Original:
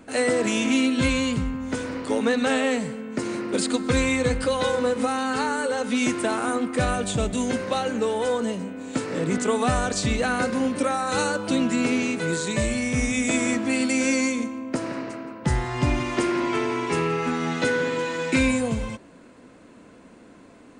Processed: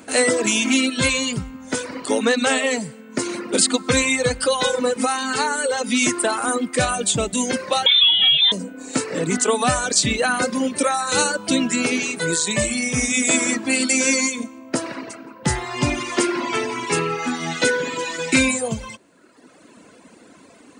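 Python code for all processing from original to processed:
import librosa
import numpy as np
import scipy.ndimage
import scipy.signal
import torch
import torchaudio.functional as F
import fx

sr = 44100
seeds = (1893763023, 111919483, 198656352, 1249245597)

y = fx.chain(x, sr, fx.freq_invert(carrier_hz=3800),
    fx.env_flatten(amount_pct=70), at=(7.86, 8.52))
y = fx.highpass(y, sr, hz=160.0, slope=6)
y = fx.dereverb_blind(y, sr, rt60_s=1.3)
y = fx.high_shelf(y, sr, hz=4000.0, db=9.5)
y = y * 10.0 ** (5.0 / 20.0)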